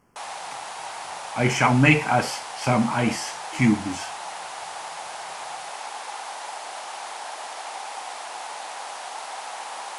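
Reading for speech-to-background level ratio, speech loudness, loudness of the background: 12.5 dB, −22.0 LKFS, −34.5 LKFS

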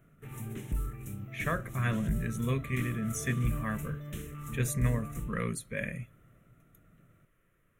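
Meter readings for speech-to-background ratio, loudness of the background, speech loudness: 6.0 dB, −40.0 LKFS, −34.0 LKFS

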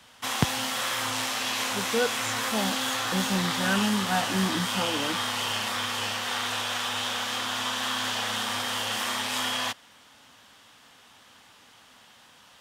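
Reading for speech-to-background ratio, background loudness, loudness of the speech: −3.5 dB, −27.5 LKFS, −31.0 LKFS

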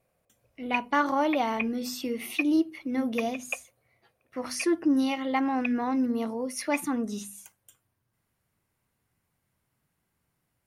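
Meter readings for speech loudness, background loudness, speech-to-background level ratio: −28.5 LKFS, −37.0 LKFS, 8.5 dB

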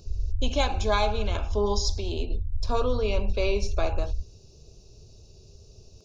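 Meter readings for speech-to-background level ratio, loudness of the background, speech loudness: 3.5 dB, −33.0 LKFS, −29.5 LKFS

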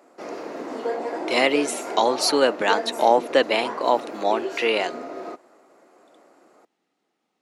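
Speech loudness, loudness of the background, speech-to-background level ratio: −22.0 LKFS, −31.5 LKFS, 9.5 dB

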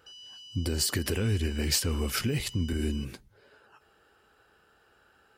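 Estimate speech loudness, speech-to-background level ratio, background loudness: −29.5 LKFS, 16.0 dB, −45.5 LKFS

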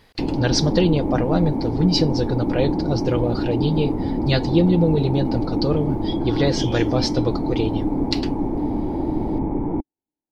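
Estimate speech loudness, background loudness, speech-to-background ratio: −22.5 LKFS, −24.0 LKFS, 1.5 dB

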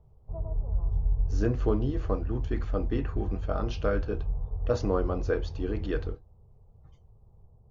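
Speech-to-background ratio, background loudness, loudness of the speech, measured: 2.0 dB, −34.0 LKFS, −32.0 LKFS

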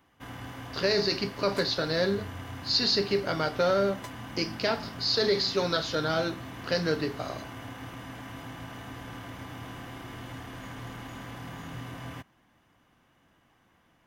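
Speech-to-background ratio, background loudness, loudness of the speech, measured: 14.0 dB, −41.5 LKFS, −27.5 LKFS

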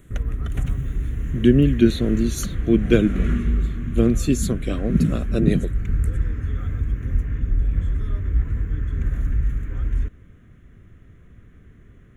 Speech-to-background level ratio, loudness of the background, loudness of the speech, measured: 5.5 dB, −26.5 LKFS, −21.0 LKFS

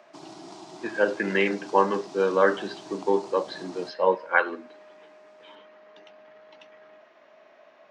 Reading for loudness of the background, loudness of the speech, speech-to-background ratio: −44.0 LKFS, −25.5 LKFS, 18.5 dB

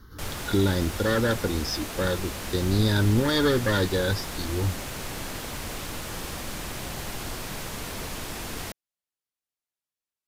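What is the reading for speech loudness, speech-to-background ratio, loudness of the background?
−25.5 LKFS, 8.5 dB, −34.0 LKFS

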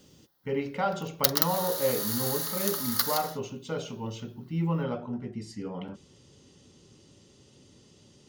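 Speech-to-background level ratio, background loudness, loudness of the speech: −4.5 dB, −28.0 LKFS, −32.5 LKFS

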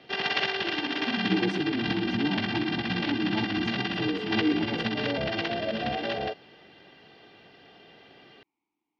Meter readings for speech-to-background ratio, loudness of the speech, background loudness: −4.0 dB, −33.0 LKFS, −29.0 LKFS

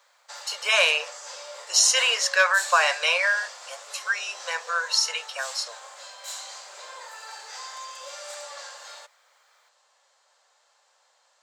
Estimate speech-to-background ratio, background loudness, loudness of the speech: 16.0 dB, −38.0 LKFS, −22.0 LKFS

